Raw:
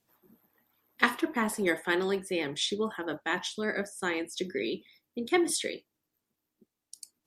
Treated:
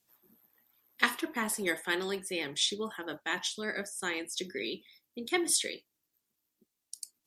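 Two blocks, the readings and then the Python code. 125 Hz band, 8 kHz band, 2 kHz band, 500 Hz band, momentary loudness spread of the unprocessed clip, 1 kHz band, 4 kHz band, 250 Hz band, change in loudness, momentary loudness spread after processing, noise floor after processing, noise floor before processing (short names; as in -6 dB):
-6.0 dB, +4.0 dB, -2.0 dB, -5.5 dB, 12 LU, -4.5 dB, +1.5 dB, -6.0 dB, -2.0 dB, 15 LU, -84 dBFS, -85 dBFS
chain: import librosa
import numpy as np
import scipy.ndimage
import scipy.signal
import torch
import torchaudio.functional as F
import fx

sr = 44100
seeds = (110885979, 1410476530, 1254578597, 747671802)

y = fx.high_shelf(x, sr, hz=2300.0, db=10.5)
y = y * 10.0 ** (-6.0 / 20.0)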